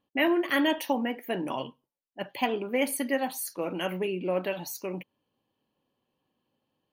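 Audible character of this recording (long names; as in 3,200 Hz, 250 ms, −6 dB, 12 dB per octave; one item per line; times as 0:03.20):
background noise floor −85 dBFS
spectral slope −4.0 dB per octave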